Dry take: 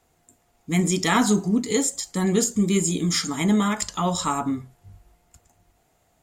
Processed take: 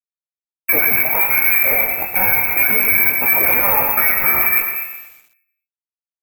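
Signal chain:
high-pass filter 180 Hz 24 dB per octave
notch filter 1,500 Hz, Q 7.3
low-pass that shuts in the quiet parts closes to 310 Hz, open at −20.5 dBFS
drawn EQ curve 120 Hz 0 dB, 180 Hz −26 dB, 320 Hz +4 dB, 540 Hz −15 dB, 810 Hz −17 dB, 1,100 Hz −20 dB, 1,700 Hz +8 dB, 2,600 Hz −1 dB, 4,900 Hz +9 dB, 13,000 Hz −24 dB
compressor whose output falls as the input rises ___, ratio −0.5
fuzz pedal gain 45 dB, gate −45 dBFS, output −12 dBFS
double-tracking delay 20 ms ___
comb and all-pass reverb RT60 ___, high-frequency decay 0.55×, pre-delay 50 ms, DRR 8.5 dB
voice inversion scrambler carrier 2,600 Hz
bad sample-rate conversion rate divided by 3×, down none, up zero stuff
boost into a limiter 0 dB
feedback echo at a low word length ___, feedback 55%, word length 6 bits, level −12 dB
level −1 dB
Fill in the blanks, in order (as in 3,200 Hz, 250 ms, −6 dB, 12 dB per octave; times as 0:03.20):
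−30 dBFS, −5 dB, 0.87 s, 122 ms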